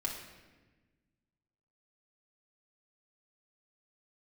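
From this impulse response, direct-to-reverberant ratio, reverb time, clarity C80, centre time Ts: -2.5 dB, 1.3 s, 7.0 dB, 40 ms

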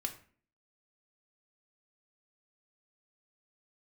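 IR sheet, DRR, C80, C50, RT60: 3.5 dB, 16.0 dB, 12.0 dB, 0.45 s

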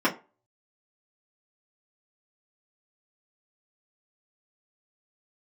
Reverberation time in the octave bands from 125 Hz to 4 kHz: 0.25 s, 0.25 s, 0.30 s, 0.30 s, 0.25 s, 0.20 s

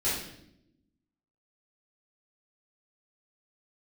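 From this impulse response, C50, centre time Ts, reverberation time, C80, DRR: 1.5 dB, 57 ms, 0.75 s, 5.5 dB, -11.0 dB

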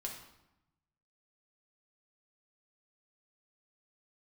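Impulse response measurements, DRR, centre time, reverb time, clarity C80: -0.5 dB, 31 ms, 0.90 s, 8.0 dB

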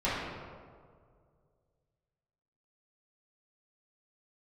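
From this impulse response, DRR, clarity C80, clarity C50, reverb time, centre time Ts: -12.0 dB, 1.0 dB, -1.5 dB, 2.0 s, 108 ms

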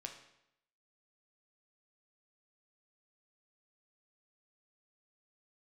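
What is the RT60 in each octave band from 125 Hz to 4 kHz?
0.80 s, 0.80 s, 0.80 s, 0.80 s, 0.75 s, 0.70 s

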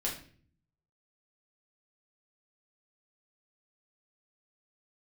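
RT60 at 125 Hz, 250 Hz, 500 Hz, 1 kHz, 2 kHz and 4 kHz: 1.0 s, 0.80 s, 0.55 s, 0.40 s, 0.45 s, 0.40 s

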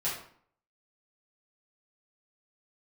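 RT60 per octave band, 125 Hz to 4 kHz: 0.60 s, 0.60 s, 0.55 s, 0.55 s, 0.50 s, 0.40 s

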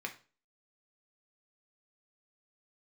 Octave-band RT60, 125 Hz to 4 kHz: 0.40 s, 0.40 s, 0.40 s, 0.35 s, 0.35 s, 0.35 s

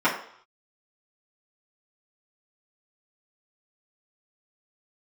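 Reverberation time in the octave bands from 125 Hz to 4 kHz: 0.50 s, 0.50 s, 0.55 s, 0.65 s, 0.60 s, 0.65 s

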